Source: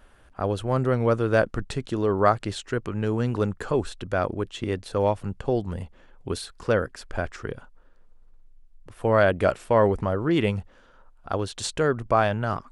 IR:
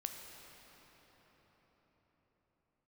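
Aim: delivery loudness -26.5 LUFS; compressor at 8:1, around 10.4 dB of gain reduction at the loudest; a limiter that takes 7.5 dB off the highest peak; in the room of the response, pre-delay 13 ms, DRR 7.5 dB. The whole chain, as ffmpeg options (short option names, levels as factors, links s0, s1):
-filter_complex "[0:a]acompressor=threshold=0.0562:ratio=8,alimiter=limit=0.0841:level=0:latency=1,asplit=2[s0][s1];[1:a]atrim=start_sample=2205,adelay=13[s2];[s1][s2]afir=irnorm=-1:irlink=0,volume=0.473[s3];[s0][s3]amix=inputs=2:normalize=0,volume=2.24"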